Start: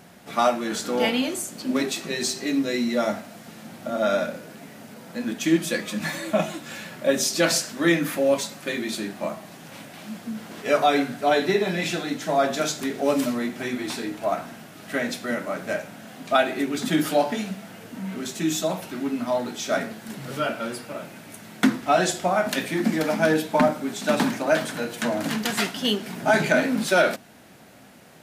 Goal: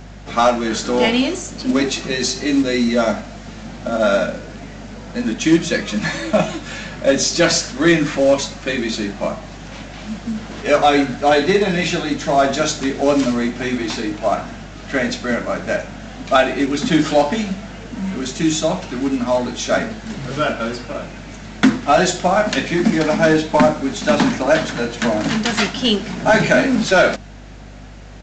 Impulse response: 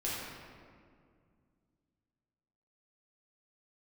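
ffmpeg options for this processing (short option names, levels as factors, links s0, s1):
-af "acontrast=80,lowshelf=f=72:g=9,aresample=16000,acrusher=bits=6:mode=log:mix=0:aa=0.000001,aresample=44100,aeval=exprs='val(0)+0.0141*(sin(2*PI*50*n/s)+sin(2*PI*2*50*n/s)/2+sin(2*PI*3*50*n/s)/3+sin(2*PI*4*50*n/s)/4+sin(2*PI*5*50*n/s)/5)':c=same"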